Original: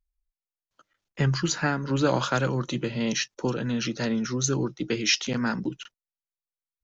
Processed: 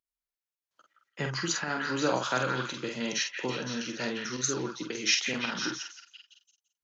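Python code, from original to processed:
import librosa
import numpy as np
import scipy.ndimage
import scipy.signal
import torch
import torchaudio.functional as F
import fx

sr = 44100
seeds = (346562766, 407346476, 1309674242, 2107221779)

p1 = fx.highpass(x, sr, hz=380.0, slope=6)
p2 = p1 + fx.echo_stepped(p1, sr, ms=170, hz=1700.0, octaves=0.7, feedback_pct=70, wet_db=-2.5, dry=0)
p3 = fx.volume_shaper(p2, sr, bpm=110, per_beat=1, depth_db=-8, release_ms=64.0, shape='slow start')
p4 = fx.doubler(p3, sr, ms=47.0, db=-5.0)
y = p4 * librosa.db_to_amplitude(-3.0)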